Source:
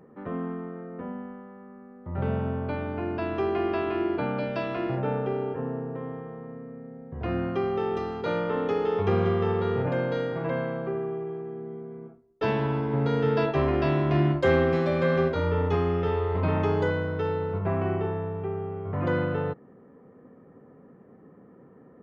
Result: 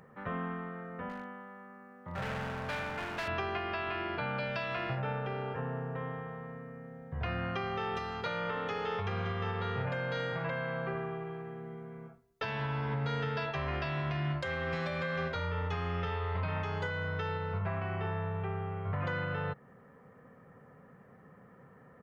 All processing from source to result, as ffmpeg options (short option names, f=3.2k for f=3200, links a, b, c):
-filter_complex "[0:a]asettb=1/sr,asplit=3[a][b][c];[a]atrim=end=1.094[d];[b]atrim=start=1.09:end=3.28,asetpts=PTS-STARTPTS,afade=t=in:d=0.004:c=qsin,afade=t=out:st=2.186:d=0.004:c=qsin,highpass=160,asoftclip=type=hard:threshold=-32dB[e];[c]atrim=start=3.276[f];[d][e]acrossfade=d=0.004:c1=hsin:c2=qsin[g];[g][f]acrossfade=d=0.004:c1=qsin:c2=hsin,firequalizer=gain_entry='entry(140,0);entry(310,-14);entry(520,-3);entry(1600,6)':delay=0.05:min_phase=1,acompressor=threshold=-29dB:ratio=2.5,alimiter=level_in=1dB:limit=-24dB:level=0:latency=1:release=364,volume=-1dB"